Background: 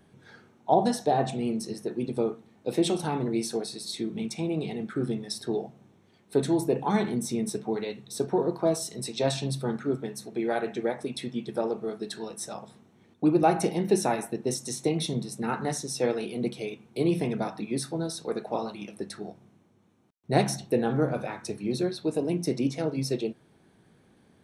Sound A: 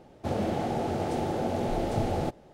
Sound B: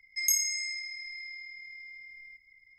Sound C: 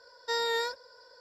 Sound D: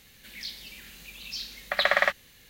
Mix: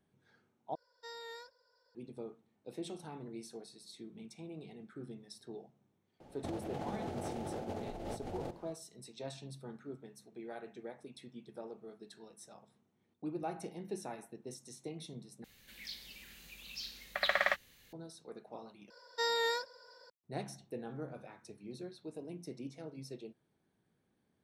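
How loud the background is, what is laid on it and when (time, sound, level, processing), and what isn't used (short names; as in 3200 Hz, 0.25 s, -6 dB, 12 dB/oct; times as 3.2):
background -18 dB
0.75 replace with C -18 dB
6.2 add A -8.5 dB + negative-ratio compressor -32 dBFS, ratio -0.5
15.44 replace with D -8 dB
18.9 replace with C -3 dB + HPF 110 Hz
not used: B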